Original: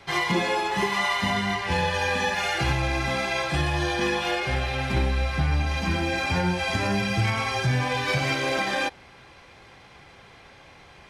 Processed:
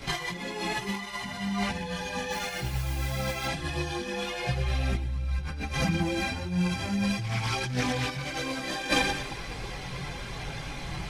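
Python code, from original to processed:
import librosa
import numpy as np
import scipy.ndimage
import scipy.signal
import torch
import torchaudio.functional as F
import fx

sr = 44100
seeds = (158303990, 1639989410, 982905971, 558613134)

p1 = fx.high_shelf(x, sr, hz=3900.0, db=10.0)
p2 = p1 + fx.echo_feedback(p1, sr, ms=106, feedback_pct=49, wet_db=-6.0, dry=0)
p3 = fx.over_compress(p2, sr, threshold_db=-29.0, ratio=-0.5)
p4 = fx.low_shelf(p3, sr, hz=310.0, db=11.0)
p5 = fx.mod_noise(p4, sr, seeds[0], snr_db=15, at=(2.3, 3.45), fade=0.02)
p6 = fx.chorus_voices(p5, sr, voices=6, hz=0.35, base_ms=20, depth_ms=4.4, mix_pct=65)
y = fx.doppler_dist(p6, sr, depth_ms=0.16, at=(7.21, 8.38))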